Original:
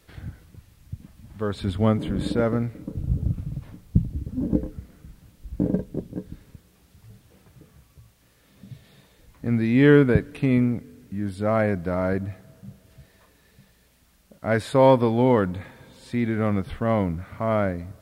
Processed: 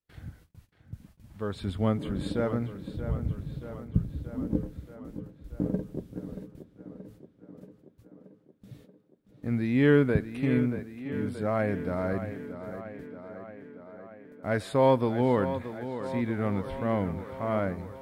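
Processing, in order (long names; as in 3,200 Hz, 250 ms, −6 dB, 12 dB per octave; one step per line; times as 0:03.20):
noise gate −47 dBFS, range −29 dB
tape delay 629 ms, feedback 72%, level −10 dB, low-pass 4,200 Hz
level −6 dB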